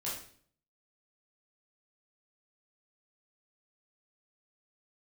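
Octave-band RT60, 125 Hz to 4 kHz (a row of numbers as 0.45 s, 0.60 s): 0.70 s, 0.65 s, 0.55 s, 0.50 s, 0.50 s, 0.50 s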